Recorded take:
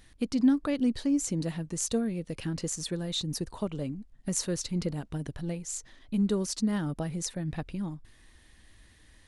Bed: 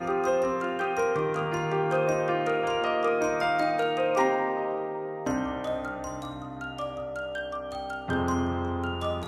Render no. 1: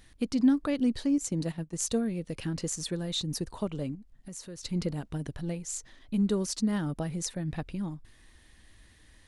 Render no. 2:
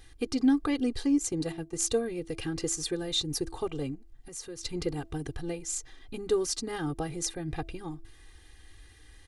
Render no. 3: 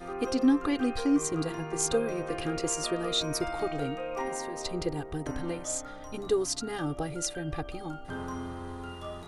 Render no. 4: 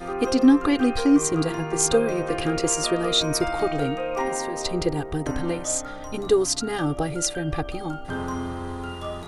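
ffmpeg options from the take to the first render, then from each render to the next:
ffmpeg -i in.wav -filter_complex "[0:a]asettb=1/sr,asplit=3[link_01][link_02][link_03];[link_01]atrim=end=1.184[link_04];[link_02]atrim=start=1.18:end=1.86,asetpts=PTS-STARTPTS,afade=type=in:duration=0.004:curve=qsin,afade=type=out:start_time=0.676:duration=0.004:curve=qsin,agate=range=-10dB:threshold=-35dB:ratio=16:release=100:detection=peak[link_05];[link_03]atrim=start=1.856[link_06];[link_04][link_05]acrossfade=duration=0.004:curve1=hsin:curve2=qsin[link_07];[link_07][link_06]acrossfade=duration=0.004:curve1=qsin:curve2=hsin,asettb=1/sr,asplit=3[link_08][link_09][link_10];[link_08]atrim=end=3.954[link_11];[link_09]atrim=start=3.95:end=4.63,asetpts=PTS-STARTPTS,afade=type=in:duration=0.004:curve=qsin,afade=type=out:start_time=0.676:duration=0.004:curve=qsin,acompressor=threshold=-49dB:ratio=2:attack=3.2:release=140:knee=1:detection=peak[link_12];[link_10]atrim=start=4.626[link_13];[link_11][link_12]acrossfade=duration=0.004:curve1=hsin:curve2=qsin[link_14];[link_14][link_13]acrossfade=duration=0.004:curve1=qsin:curve2=hsin" out.wav
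ffmpeg -i in.wav -af "aecho=1:1:2.5:0.93,bandreject=frequency=330.8:width_type=h:width=4,bandreject=frequency=661.6:width_type=h:width=4,bandreject=frequency=992.4:width_type=h:width=4" out.wav
ffmpeg -i in.wav -i bed.wav -filter_complex "[1:a]volume=-10dB[link_01];[0:a][link_01]amix=inputs=2:normalize=0" out.wav
ffmpeg -i in.wav -af "volume=7.5dB" out.wav

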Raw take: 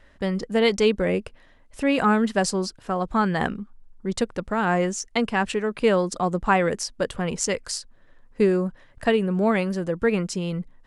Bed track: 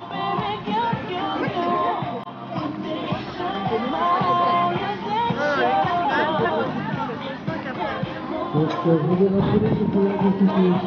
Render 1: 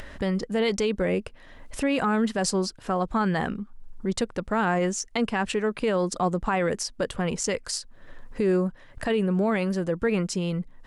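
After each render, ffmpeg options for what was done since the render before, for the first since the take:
ffmpeg -i in.wav -af "acompressor=mode=upward:threshold=-28dB:ratio=2.5,alimiter=limit=-15.5dB:level=0:latency=1:release=29" out.wav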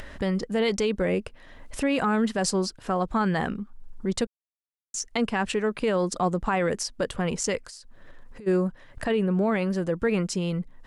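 ffmpeg -i in.wav -filter_complex "[0:a]asplit=3[link_01][link_02][link_03];[link_01]afade=type=out:start_time=7.65:duration=0.02[link_04];[link_02]acompressor=threshold=-40dB:ratio=10:attack=3.2:release=140:knee=1:detection=peak,afade=type=in:start_time=7.65:duration=0.02,afade=type=out:start_time=8.46:duration=0.02[link_05];[link_03]afade=type=in:start_time=8.46:duration=0.02[link_06];[link_04][link_05][link_06]amix=inputs=3:normalize=0,asettb=1/sr,asplit=3[link_07][link_08][link_09];[link_07]atrim=end=9.044[link_10];[link_08]atrim=start=9.04:end=9.75,asetpts=PTS-STARTPTS,afade=type=in:duration=0.004:curve=qsin,afade=type=out:start_time=0.706:duration=0.004:curve=qsin,highshelf=frequency=5300:gain=-6.5[link_11];[link_09]atrim=start=9.746[link_12];[link_10][link_11]acrossfade=duration=0.004:curve1=hsin:curve2=qsin[link_13];[link_13][link_12]acrossfade=duration=0.004:curve1=qsin:curve2=hsin,asplit=3[link_14][link_15][link_16];[link_14]atrim=end=4.27,asetpts=PTS-STARTPTS,afade=type=out:start_time=4.266:duration=0.004:curve=hsin[link_17];[link_15]atrim=start=4.27:end=4.94,asetpts=PTS-STARTPTS,volume=0[link_18];[link_16]atrim=start=4.94,asetpts=PTS-STARTPTS,afade=type=in:duration=0.004:curve=hsin[link_19];[link_17][link_18][link_19]concat=n=3:v=0:a=1" out.wav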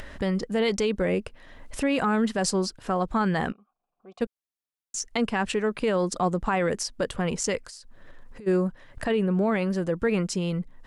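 ffmpeg -i in.wav -filter_complex "[0:a]asplit=3[link_01][link_02][link_03];[link_01]afade=type=out:start_time=3.51:duration=0.02[link_04];[link_02]asplit=3[link_05][link_06][link_07];[link_05]bandpass=frequency=730:width_type=q:width=8,volume=0dB[link_08];[link_06]bandpass=frequency=1090:width_type=q:width=8,volume=-6dB[link_09];[link_07]bandpass=frequency=2440:width_type=q:width=8,volume=-9dB[link_10];[link_08][link_09][link_10]amix=inputs=3:normalize=0,afade=type=in:start_time=3.51:duration=0.02,afade=type=out:start_time=4.2:duration=0.02[link_11];[link_03]afade=type=in:start_time=4.2:duration=0.02[link_12];[link_04][link_11][link_12]amix=inputs=3:normalize=0" out.wav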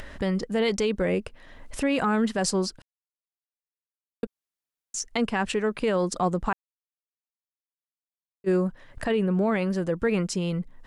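ffmpeg -i in.wav -filter_complex "[0:a]asplit=5[link_01][link_02][link_03][link_04][link_05];[link_01]atrim=end=2.82,asetpts=PTS-STARTPTS,afade=type=out:start_time=2.816:duration=0.004:curve=hsin[link_06];[link_02]atrim=start=2.82:end=4.23,asetpts=PTS-STARTPTS,volume=0[link_07];[link_03]atrim=start=4.23:end=6.53,asetpts=PTS-STARTPTS,afade=type=in:duration=0.004:curve=hsin,afade=type=out:start_time=2.296:duration=0.004:curve=hsin[link_08];[link_04]atrim=start=6.53:end=8.44,asetpts=PTS-STARTPTS,volume=0[link_09];[link_05]atrim=start=8.44,asetpts=PTS-STARTPTS,afade=type=in:duration=0.004:curve=hsin[link_10];[link_06][link_07][link_08][link_09][link_10]concat=n=5:v=0:a=1" out.wav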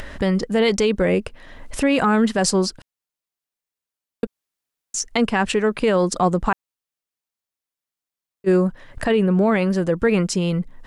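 ffmpeg -i in.wav -af "volume=6.5dB" out.wav

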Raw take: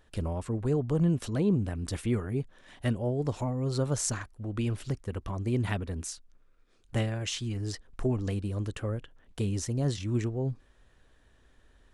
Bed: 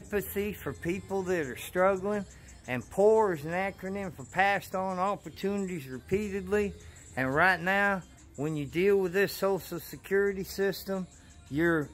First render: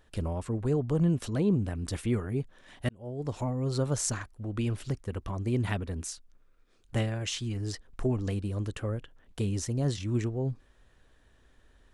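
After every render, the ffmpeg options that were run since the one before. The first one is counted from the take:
ffmpeg -i in.wav -filter_complex "[0:a]asplit=2[link_01][link_02];[link_01]atrim=end=2.89,asetpts=PTS-STARTPTS,afade=type=out:start_time=2.886:duration=0.004:curve=hsin[link_03];[link_02]atrim=start=2.89,asetpts=PTS-STARTPTS,afade=type=in:duration=0.56[link_04];[link_03][link_04]concat=n=2:v=0:a=1" out.wav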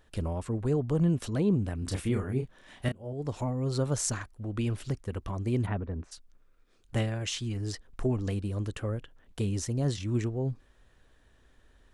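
ffmpeg -i in.wav -filter_complex "[0:a]asettb=1/sr,asplit=3[link_01][link_02][link_03];[link_01]atrim=end=1.794[link_04];[link_02]atrim=start=1.79:end=3.13,asetpts=PTS-STARTPTS,afade=type=in:duration=0.004:curve=qsin,afade=type=out:start_time=1.336:duration=0.004:curve=qsin,asplit=2[link_05][link_06];[link_06]adelay=31,volume=-6dB[link_07];[link_05][link_07]amix=inputs=2:normalize=0,atrim=end_sample=59094[link_08];[link_03]atrim=start=3.126[link_09];[link_04][link_08]acrossfade=duration=0.004:curve1=hsin:curve2=qsin[link_10];[link_10][link_09]acrossfade=duration=0.004:curve1=qsin:curve2=hsin,asplit=3[link_11][link_12][link_13];[link_11]afade=type=out:start_time=5.65:duration=0.02[link_14];[link_12]lowpass=1400,afade=type=in:start_time=5.65:duration=0.02,afade=type=out:start_time=6.11:duration=0.02[link_15];[link_13]afade=type=in:start_time=6.11:duration=0.02[link_16];[link_14][link_15][link_16]amix=inputs=3:normalize=0" out.wav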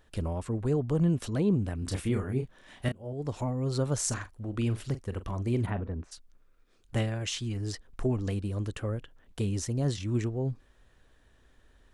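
ffmpeg -i in.wav -filter_complex "[0:a]asettb=1/sr,asplit=3[link_01][link_02][link_03];[link_01]atrim=end=4.044[link_04];[link_02]atrim=start=4.04:end=5.92,asetpts=PTS-STARTPTS,afade=type=in:duration=0.004:curve=qsin,afade=type=out:start_time=1.876:duration=0.004:curve=qsin,asplit=2[link_05][link_06];[link_06]adelay=43,volume=-13dB[link_07];[link_05][link_07]amix=inputs=2:normalize=0,atrim=end_sample=82908[link_08];[link_03]atrim=start=5.916[link_09];[link_04][link_08]acrossfade=duration=0.004:curve1=hsin:curve2=qsin[link_10];[link_10][link_09]acrossfade=duration=0.004:curve1=qsin:curve2=hsin" out.wav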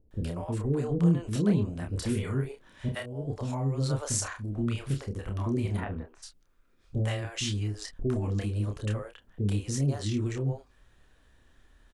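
ffmpeg -i in.wav -filter_complex "[0:a]asplit=2[link_01][link_02];[link_02]adelay=29,volume=-5dB[link_03];[link_01][link_03]amix=inputs=2:normalize=0,acrossover=split=480[link_04][link_05];[link_05]adelay=110[link_06];[link_04][link_06]amix=inputs=2:normalize=0" out.wav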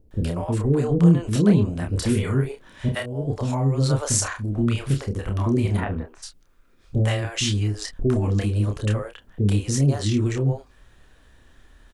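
ffmpeg -i in.wav -af "volume=8dB" out.wav

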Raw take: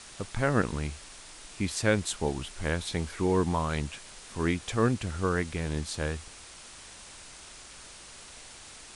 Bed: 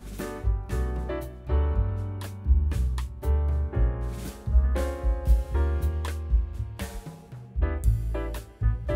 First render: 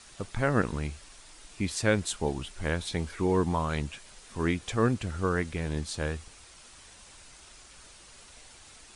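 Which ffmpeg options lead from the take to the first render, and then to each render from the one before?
ffmpeg -i in.wav -af "afftdn=noise_reduction=6:noise_floor=-48" out.wav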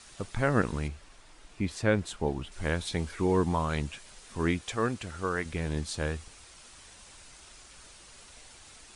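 ffmpeg -i in.wav -filter_complex "[0:a]asettb=1/sr,asplit=3[link_01][link_02][link_03];[link_01]atrim=end=0.884[link_04];[link_02]atrim=start=0.88:end=2.52,asetpts=PTS-STARTPTS,afade=type=in:duration=0.004:curve=qsin,afade=type=out:start_time=1.636:duration=0.004:curve=qsin,highshelf=frequency=3600:gain=-11[link_05];[link_03]atrim=start=2.516[link_06];[link_04][link_05]acrossfade=duration=0.004:curve1=hsin:curve2=qsin[link_07];[link_07][link_06]acrossfade=duration=0.004:curve1=qsin:curve2=hsin,asettb=1/sr,asplit=3[link_08][link_09][link_10];[link_08]atrim=end=4.614[link_11];[link_09]atrim=start=4.61:end=5.46,asetpts=PTS-STARTPTS,afade=type=in:duration=0.004:curve=qsin,afade=type=out:start_time=0.846:duration=0.004:curve=qsin,lowshelf=frequency=340:gain=-8.5[link_12];[link_10]atrim=start=5.456[link_13];[link_11][link_12]acrossfade=duration=0.004:curve1=hsin:curve2=qsin[link_14];[link_14][link_13]acrossfade=duration=0.004:curve1=qsin:curve2=hsin" out.wav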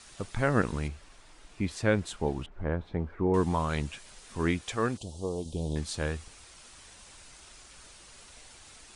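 ffmpeg -i in.wav -filter_complex "[0:a]asettb=1/sr,asplit=3[link_01][link_02][link_03];[link_01]atrim=end=2.464[link_04];[link_02]atrim=start=2.46:end=3.34,asetpts=PTS-STARTPTS,afade=type=in:duration=0.004:curve=qsin,afade=type=out:start_time=0.876:duration=0.004:curve=qsin,lowpass=1100[link_05];[link_03]atrim=start=3.336[link_06];[link_04][link_05]acrossfade=duration=0.004:curve1=hsin:curve2=qsin[link_07];[link_07][link_06]acrossfade=duration=0.004:curve1=qsin:curve2=hsin,asettb=1/sr,asplit=3[link_08][link_09][link_10];[link_08]atrim=end=4.974[link_11];[link_09]atrim=start=4.97:end=5.76,asetpts=PTS-STARTPTS,afade=type=in:duration=0.004:curve=qsin,afade=type=out:start_time=0.786:duration=0.004:curve=qsin,asuperstop=centerf=1700:order=8:qfactor=0.71[link_12];[link_10]atrim=start=5.756[link_13];[link_11][link_12]acrossfade=duration=0.004:curve1=hsin:curve2=qsin[link_14];[link_14][link_13]acrossfade=duration=0.004:curve1=qsin:curve2=hsin" out.wav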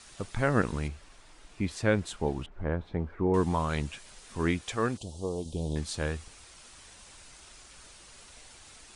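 ffmpeg -i in.wav -af anull out.wav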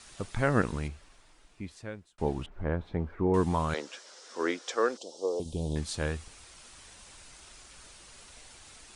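ffmpeg -i in.wav -filter_complex "[0:a]asettb=1/sr,asplit=3[link_01][link_02][link_03];[link_01]atrim=end=3.744[link_04];[link_02]atrim=start=3.74:end=5.4,asetpts=PTS-STARTPTS,afade=type=in:duration=0.004:curve=qsin,afade=type=out:start_time=1.656:duration=0.004:curve=qsin,highpass=frequency=310:width=0.5412,highpass=frequency=310:width=1.3066,equalizer=frequency=510:width_type=q:width=4:gain=8,equalizer=frequency=1400:width_type=q:width=4:gain=4,equalizer=frequency=2500:width_type=q:width=4:gain=-6,equalizer=frequency=5400:width_type=q:width=4:gain=7,lowpass=frequency=7800:width=0.5412,lowpass=frequency=7800:width=1.3066[link_05];[link_03]atrim=start=5.396[link_06];[link_04][link_05]acrossfade=duration=0.004:curve1=hsin:curve2=qsin[link_07];[link_07][link_06]acrossfade=duration=0.004:curve1=qsin:curve2=hsin,asplit=2[link_08][link_09];[link_08]atrim=end=2.18,asetpts=PTS-STARTPTS,afade=type=out:start_time=0.56:duration=1.62[link_10];[link_09]atrim=start=2.18,asetpts=PTS-STARTPTS,afade=type=in:duration=0.004:curve=hsin[link_11];[link_10][link_11]concat=n=2:v=0:a=1" out.wav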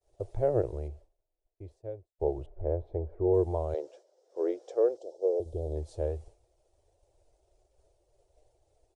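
ffmpeg -i in.wav -af "agate=range=-33dB:threshold=-43dB:ratio=3:detection=peak,firequalizer=gain_entry='entry(110,0);entry(200,-28);entry(350,2);entry(620,5);entry(1100,-20);entry(1500,-24);entry(5900,-19)':delay=0.05:min_phase=1" out.wav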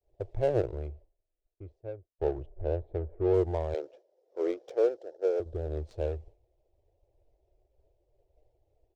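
ffmpeg -i in.wav -af "aexciter=amount=6.3:drive=3.6:freq=2000,adynamicsmooth=sensitivity=5:basefreq=810" out.wav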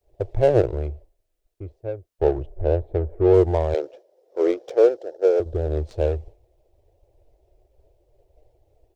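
ffmpeg -i in.wav -af "volume=10dB" out.wav

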